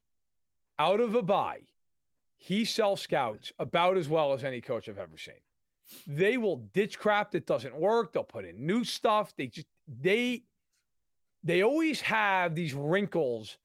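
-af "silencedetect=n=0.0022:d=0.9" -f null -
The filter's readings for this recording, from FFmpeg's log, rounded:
silence_start: 10.40
silence_end: 11.43 | silence_duration: 1.03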